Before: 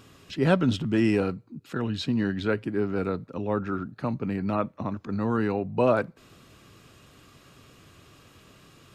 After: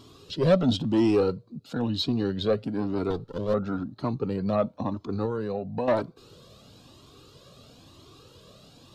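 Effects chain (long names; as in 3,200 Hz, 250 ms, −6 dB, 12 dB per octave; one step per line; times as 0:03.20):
0:03.10–0:03.54: lower of the sound and its delayed copy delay 0.6 ms
octave-band graphic EQ 125/250/500/1,000/2,000/4,000 Hz +3/+5/+8/+4/−10/+12 dB
0:05.25–0:05.88: downward compressor 4 to 1, threshold −22 dBFS, peak gain reduction 11 dB
soft clipping −11 dBFS, distortion −15 dB
flanger whose copies keep moving one way rising 1 Hz
level +1 dB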